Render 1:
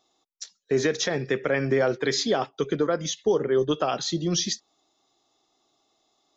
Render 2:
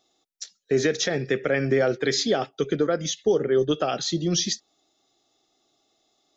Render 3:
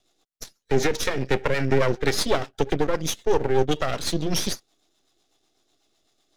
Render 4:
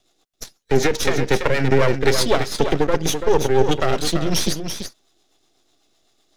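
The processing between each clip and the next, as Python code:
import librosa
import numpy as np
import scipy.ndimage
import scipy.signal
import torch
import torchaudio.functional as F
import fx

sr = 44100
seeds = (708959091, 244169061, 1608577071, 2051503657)

y1 = fx.peak_eq(x, sr, hz=1000.0, db=-13.0, octaves=0.31)
y1 = y1 * 10.0 ** (1.5 / 20.0)
y2 = np.maximum(y1, 0.0)
y2 = fx.rotary(y2, sr, hz=8.0)
y2 = y2 * 10.0 ** (6.5 / 20.0)
y3 = y2 + 10.0 ** (-7.5 / 20.0) * np.pad(y2, (int(335 * sr / 1000.0), 0))[:len(y2)]
y3 = y3 * 10.0 ** (4.0 / 20.0)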